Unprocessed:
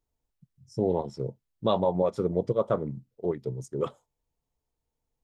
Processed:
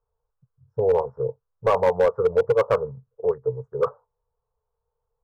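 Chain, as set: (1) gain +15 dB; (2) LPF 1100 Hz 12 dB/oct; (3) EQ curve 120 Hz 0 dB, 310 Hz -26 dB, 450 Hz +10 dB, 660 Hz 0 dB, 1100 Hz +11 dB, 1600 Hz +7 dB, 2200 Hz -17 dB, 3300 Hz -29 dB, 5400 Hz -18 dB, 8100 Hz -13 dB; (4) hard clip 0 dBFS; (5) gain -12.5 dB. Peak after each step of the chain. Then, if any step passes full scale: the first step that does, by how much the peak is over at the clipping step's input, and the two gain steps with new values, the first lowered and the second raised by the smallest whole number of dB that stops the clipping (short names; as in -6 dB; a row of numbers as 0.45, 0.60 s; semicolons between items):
+3.0, +2.5, +6.5, 0.0, -12.5 dBFS; step 1, 6.5 dB; step 1 +8 dB, step 5 -5.5 dB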